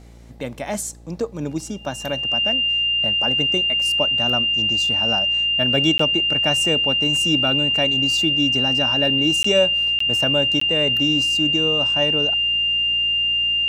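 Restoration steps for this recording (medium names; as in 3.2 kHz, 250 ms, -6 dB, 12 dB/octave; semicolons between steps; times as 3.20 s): de-hum 57.9 Hz, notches 12; band-stop 2.8 kHz, Q 30; interpolate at 5.98/9.43/9.99/10.60 s, 14 ms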